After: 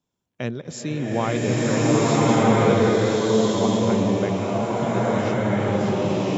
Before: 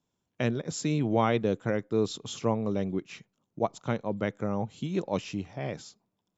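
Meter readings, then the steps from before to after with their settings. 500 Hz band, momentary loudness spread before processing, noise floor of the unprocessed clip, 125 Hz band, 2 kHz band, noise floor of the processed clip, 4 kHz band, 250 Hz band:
+10.0 dB, 11 LU, -82 dBFS, +10.0 dB, +10.5 dB, -80 dBFS, +10.0 dB, +10.0 dB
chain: swelling reverb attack 1380 ms, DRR -10 dB

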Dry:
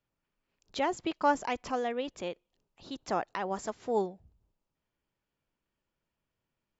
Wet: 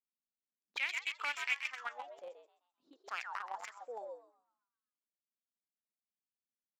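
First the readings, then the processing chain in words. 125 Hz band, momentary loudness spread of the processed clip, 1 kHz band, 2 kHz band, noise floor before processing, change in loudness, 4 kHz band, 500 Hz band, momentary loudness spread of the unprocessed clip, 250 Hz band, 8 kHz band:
under -35 dB, 14 LU, -12.0 dB, +2.5 dB, under -85 dBFS, -6.5 dB, -1.0 dB, -17.0 dB, 13 LU, -32.5 dB, no reading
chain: differentiator; frequency-shifting echo 130 ms, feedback 52%, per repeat +120 Hz, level -4 dB; in parallel at -5 dB: companded quantiser 2-bit; on the sum: auto-wah 220–2300 Hz, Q 5.9, up, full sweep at -38 dBFS; trim +13.5 dB

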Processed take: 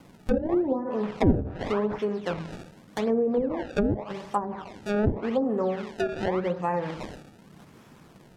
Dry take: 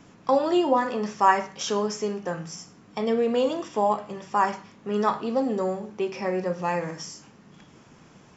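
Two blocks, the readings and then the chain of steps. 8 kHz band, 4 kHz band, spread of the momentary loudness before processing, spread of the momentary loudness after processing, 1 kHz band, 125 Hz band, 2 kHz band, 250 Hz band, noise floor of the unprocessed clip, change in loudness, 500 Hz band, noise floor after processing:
no reading, -8.0 dB, 13 LU, 12 LU, -8.5 dB, +6.5 dB, -4.5 dB, +1.5 dB, -53 dBFS, -2.0 dB, -1.5 dB, -53 dBFS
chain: feedback echo behind a low-pass 87 ms, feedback 63%, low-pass 3.3 kHz, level -16 dB; decimation with a swept rate 24×, swing 160% 0.86 Hz; low-pass that closes with the level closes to 390 Hz, closed at -18 dBFS

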